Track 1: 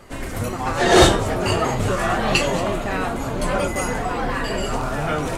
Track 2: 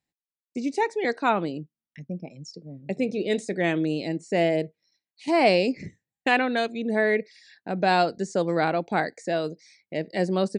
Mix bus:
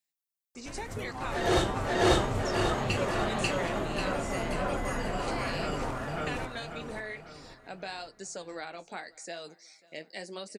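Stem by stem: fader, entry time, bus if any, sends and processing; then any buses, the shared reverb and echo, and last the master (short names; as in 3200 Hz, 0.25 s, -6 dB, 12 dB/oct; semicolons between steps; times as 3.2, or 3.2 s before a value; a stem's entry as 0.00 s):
-7.5 dB, 0.55 s, no send, echo send -4 dB, high shelf 6800 Hz -7 dB; auto duck -6 dB, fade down 0.85 s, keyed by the second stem
-5.0 dB, 0.00 s, no send, echo send -23.5 dB, tilt +4 dB/oct; compressor 6:1, threshold -27 dBFS, peak gain reduction 12.5 dB; flange 0.85 Hz, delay 4.4 ms, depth 8.8 ms, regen -48%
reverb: off
echo: feedback echo 0.542 s, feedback 42%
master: dry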